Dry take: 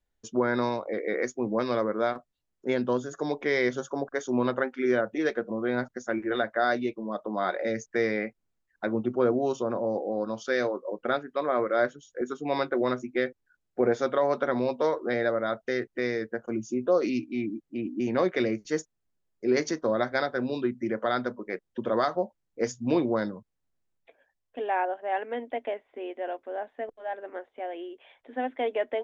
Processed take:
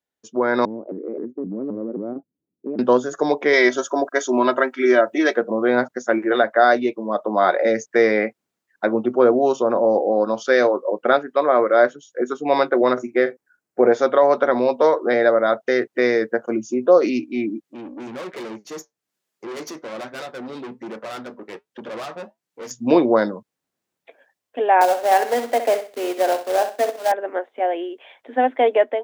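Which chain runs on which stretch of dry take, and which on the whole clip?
0:00.65–0:02.79: low-pass with resonance 290 Hz, resonance Q 2 + downward compressor, threshold −33 dBFS + pitch modulation by a square or saw wave saw up 3.8 Hz, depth 250 cents
0:03.53–0:05.36: spectral tilt +1.5 dB per octave + comb filter 3.1 ms, depth 67%
0:12.93–0:13.86: parametric band 3,500 Hz −6.5 dB 0.93 octaves + double-tracking delay 42 ms −12 dB
0:17.64–0:22.71: tube saturation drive 35 dB, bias 0.6 + flanger 1.2 Hz, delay 4.5 ms, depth 3.3 ms, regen −73% + one half of a high-frequency compander encoder only
0:24.81–0:27.12: Chebyshev high-pass filter 230 Hz, order 4 + log-companded quantiser 4 bits + flutter between parallel walls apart 11 metres, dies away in 0.37 s
whole clip: high-pass filter 200 Hz 12 dB per octave; dynamic equaliser 720 Hz, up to +5 dB, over −39 dBFS, Q 0.71; automatic gain control gain up to 11.5 dB; level −1.5 dB

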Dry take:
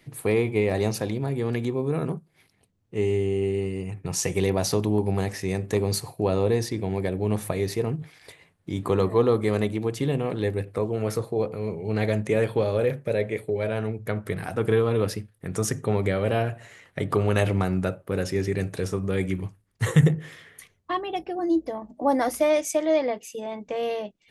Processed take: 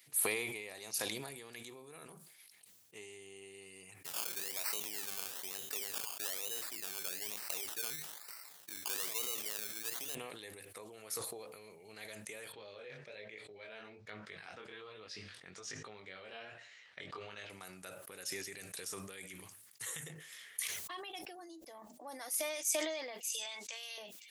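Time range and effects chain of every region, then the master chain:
0:04.04–0:10.15: low-shelf EQ 210 Hz −11.5 dB + sample-and-hold swept by an LFO 18×, swing 60% 1.1 Hz
0:12.52–0:17.50: low-pass filter 5,000 Hz 24 dB per octave + chorus effect 1.2 Hz, delay 18.5 ms, depth 3.9 ms
0:23.30–0:23.98: meter weighting curve ITU-R 468 + downward compressor, threshold −38 dBFS
whole clip: downward compressor 3 to 1, threshold −33 dBFS; first difference; level that may fall only so fast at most 35 dB per second; level +4.5 dB

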